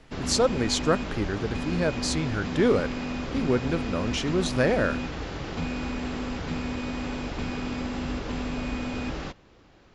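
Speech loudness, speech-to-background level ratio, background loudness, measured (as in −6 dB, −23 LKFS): −27.0 LKFS, 5.0 dB, −32.0 LKFS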